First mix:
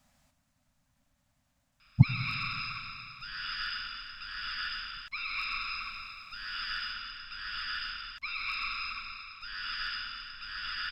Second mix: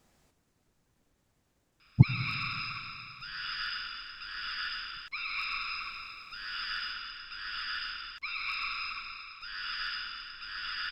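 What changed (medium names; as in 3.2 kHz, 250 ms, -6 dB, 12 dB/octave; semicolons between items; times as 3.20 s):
background: add bass shelf 450 Hz -5 dB; master: remove Chebyshev band-stop 270–570 Hz, order 3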